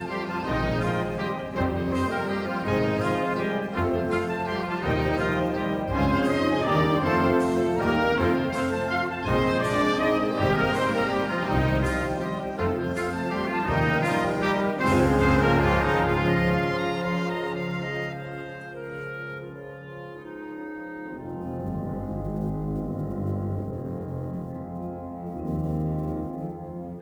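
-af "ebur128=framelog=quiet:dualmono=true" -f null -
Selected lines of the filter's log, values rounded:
Integrated loudness:
  I:         -22.6 LUFS
  Threshold: -33.0 LUFS
Loudness range:
  LRA:        10.7 LU
  Threshold: -42.8 LUFS
  LRA low:   -30.5 LUFS
  LRA high:  -19.7 LUFS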